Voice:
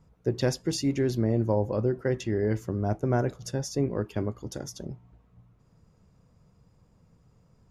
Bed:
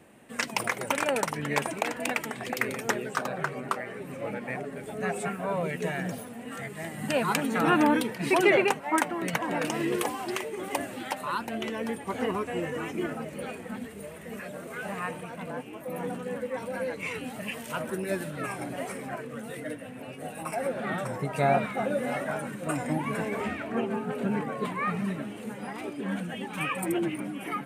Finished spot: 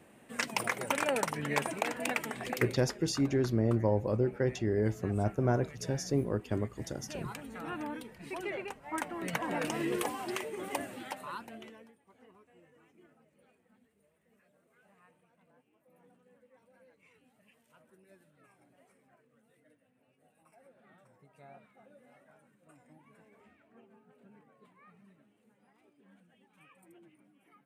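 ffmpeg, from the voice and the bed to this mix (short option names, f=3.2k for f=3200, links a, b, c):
-filter_complex "[0:a]adelay=2350,volume=-3dB[a];[1:a]volume=9dB,afade=t=out:st=2.53:d=0.28:silence=0.211349,afade=t=in:st=8.76:d=0.65:silence=0.237137,afade=t=out:st=10.67:d=1.25:silence=0.0473151[b];[a][b]amix=inputs=2:normalize=0"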